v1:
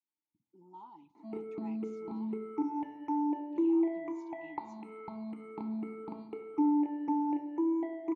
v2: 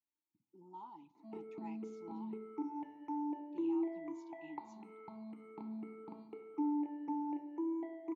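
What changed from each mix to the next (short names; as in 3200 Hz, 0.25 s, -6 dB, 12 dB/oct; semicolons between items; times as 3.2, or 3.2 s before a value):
background -7.5 dB; master: add HPF 99 Hz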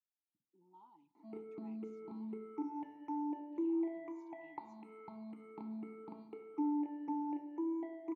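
speech -11.0 dB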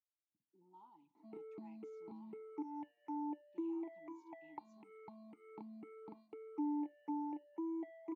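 background: send off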